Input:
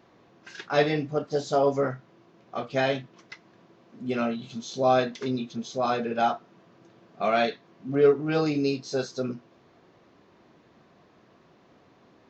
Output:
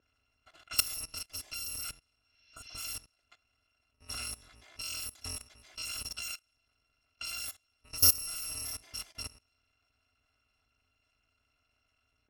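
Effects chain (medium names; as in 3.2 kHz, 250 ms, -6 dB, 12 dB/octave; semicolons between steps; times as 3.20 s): bit-reversed sample order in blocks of 256 samples; level-controlled noise filter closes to 2.4 kHz, open at -20 dBFS; level held to a coarse grid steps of 19 dB; spectral replace 2.25–2.82 s, 1.5–6.3 kHz both; trim -1 dB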